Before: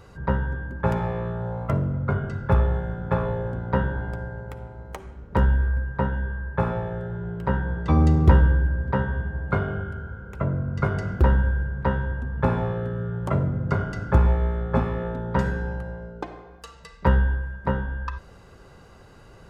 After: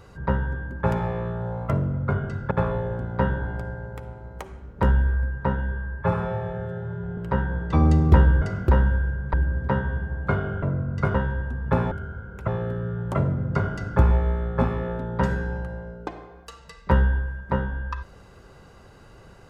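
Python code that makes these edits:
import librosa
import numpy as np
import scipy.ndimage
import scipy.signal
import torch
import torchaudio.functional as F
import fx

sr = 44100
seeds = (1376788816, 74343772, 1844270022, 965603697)

y = fx.edit(x, sr, fx.cut(start_s=2.51, length_s=0.54),
    fx.stretch_span(start_s=6.56, length_s=0.77, factor=1.5),
    fx.move(start_s=9.86, length_s=0.56, to_s=12.63),
    fx.move(start_s=10.94, length_s=0.92, to_s=8.57), tone=tone)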